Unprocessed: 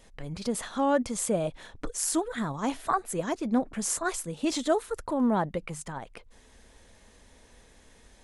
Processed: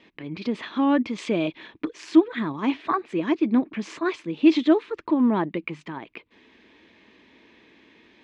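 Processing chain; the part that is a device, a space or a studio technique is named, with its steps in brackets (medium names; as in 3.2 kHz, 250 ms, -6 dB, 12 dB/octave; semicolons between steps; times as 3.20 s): 1.18–1.58 s: peaking EQ 5.3 kHz +7.5 dB 2.4 oct; kitchen radio (cabinet simulation 210–3700 Hz, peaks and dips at 320 Hz +10 dB, 530 Hz -9 dB, 750 Hz -9 dB, 1.4 kHz -6 dB, 2.4 kHz +6 dB); trim +5.5 dB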